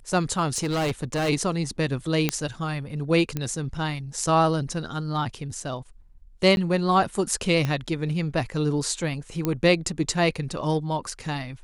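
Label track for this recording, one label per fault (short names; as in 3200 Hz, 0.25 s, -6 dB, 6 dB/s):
0.540000	1.300000	clipped -22 dBFS
2.290000	2.290000	pop -6 dBFS
3.370000	3.370000	pop -14 dBFS
6.560000	6.570000	gap 11 ms
7.650000	7.650000	pop -13 dBFS
9.450000	9.450000	pop -11 dBFS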